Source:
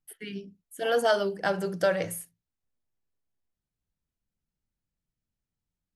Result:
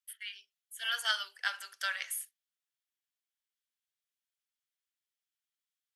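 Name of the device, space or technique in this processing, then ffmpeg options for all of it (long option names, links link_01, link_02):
headphones lying on a table: -af "highpass=frequency=1400:width=0.5412,highpass=frequency=1400:width=1.3066,equalizer=frequency=3300:width_type=o:width=0.29:gain=6"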